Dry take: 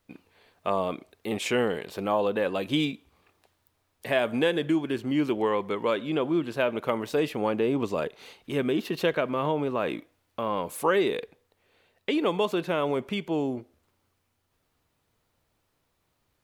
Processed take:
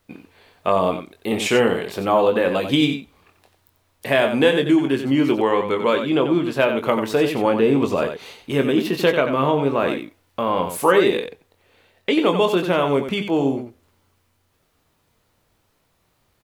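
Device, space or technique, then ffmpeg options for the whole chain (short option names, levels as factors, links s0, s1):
slapback doubling: -filter_complex "[0:a]asplit=3[s0][s1][s2];[s1]adelay=22,volume=0.422[s3];[s2]adelay=91,volume=0.398[s4];[s0][s3][s4]amix=inputs=3:normalize=0,volume=2.24"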